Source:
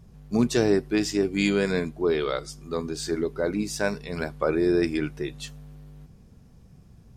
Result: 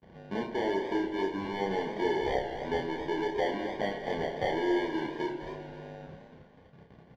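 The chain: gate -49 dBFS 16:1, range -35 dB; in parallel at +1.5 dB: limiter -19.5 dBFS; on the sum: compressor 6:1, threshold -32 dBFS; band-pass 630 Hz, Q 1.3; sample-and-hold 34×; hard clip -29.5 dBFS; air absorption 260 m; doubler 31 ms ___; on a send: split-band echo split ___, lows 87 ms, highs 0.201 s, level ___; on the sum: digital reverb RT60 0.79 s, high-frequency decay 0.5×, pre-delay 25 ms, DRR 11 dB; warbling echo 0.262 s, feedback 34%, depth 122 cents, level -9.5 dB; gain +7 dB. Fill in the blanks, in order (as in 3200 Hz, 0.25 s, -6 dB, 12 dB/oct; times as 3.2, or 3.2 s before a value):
-3 dB, 540 Hz, -12 dB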